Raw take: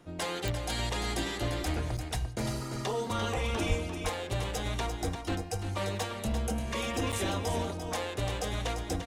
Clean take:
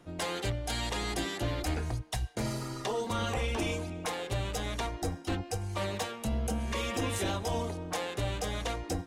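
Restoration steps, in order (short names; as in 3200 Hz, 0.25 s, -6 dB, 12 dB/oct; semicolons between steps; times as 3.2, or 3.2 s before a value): de-click; de-plosive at 3.68; interpolate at 1.97/7.12, 6.6 ms; inverse comb 0.345 s -8 dB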